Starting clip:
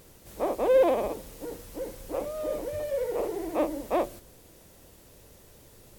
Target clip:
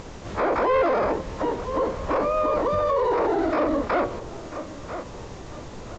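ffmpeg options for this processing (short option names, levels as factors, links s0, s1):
-filter_complex "[0:a]asplit=2[s0][s1];[s1]adelay=986,lowpass=f=2000:p=1,volume=0.0708,asplit=2[s2][s3];[s3]adelay=986,lowpass=f=2000:p=1,volume=0.35[s4];[s0][s2][s4]amix=inputs=3:normalize=0,acrossover=split=2600[s5][s6];[s6]acompressor=threshold=0.001:ratio=4:attack=1:release=60[s7];[s5][s7]amix=inputs=2:normalize=0,asplit=3[s8][s9][s10];[s9]asetrate=37084,aresample=44100,atempo=1.18921,volume=0.398[s11];[s10]asetrate=88200,aresample=44100,atempo=0.5,volume=0.631[s12];[s8][s11][s12]amix=inputs=3:normalize=0,aresample=16000,aeval=exprs='0.376*sin(PI/2*1.58*val(0)/0.376)':c=same,aresample=44100,alimiter=limit=0.133:level=0:latency=1:release=13,asplit=2[s13][s14];[s14]acompressor=threshold=0.0178:ratio=6,volume=1.12[s15];[s13][s15]amix=inputs=2:normalize=0"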